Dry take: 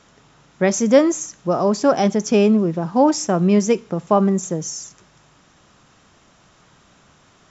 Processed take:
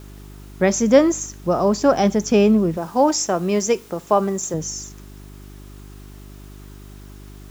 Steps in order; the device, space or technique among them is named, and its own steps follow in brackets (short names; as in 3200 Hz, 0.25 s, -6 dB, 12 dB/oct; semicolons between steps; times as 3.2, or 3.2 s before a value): video cassette with head-switching buzz (buzz 50 Hz, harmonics 8, -40 dBFS -5 dB/oct; white noise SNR 34 dB); 2.77–4.54 tone controls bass -11 dB, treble +4 dB